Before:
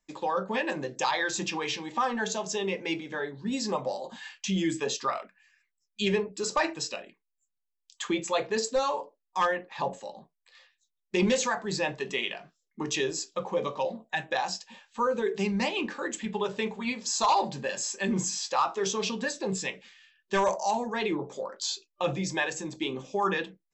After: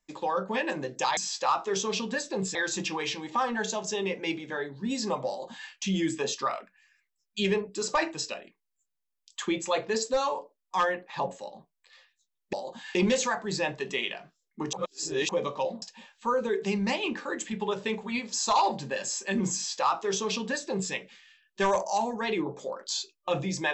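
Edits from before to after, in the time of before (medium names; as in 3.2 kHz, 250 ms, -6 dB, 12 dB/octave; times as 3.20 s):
3.90–4.32 s: copy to 11.15 s
12.93–13.49 s: reverse
14.02–14.55 s: delete
18.27–19.65 s: copy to 1.17 s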